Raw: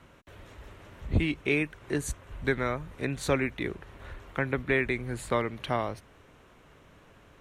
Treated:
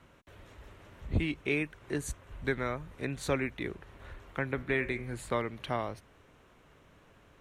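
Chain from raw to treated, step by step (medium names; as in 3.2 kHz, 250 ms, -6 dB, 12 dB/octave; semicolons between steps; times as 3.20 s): 4.54–5.17 s: de-hum 76.15 Hz, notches 39; trim -4 dB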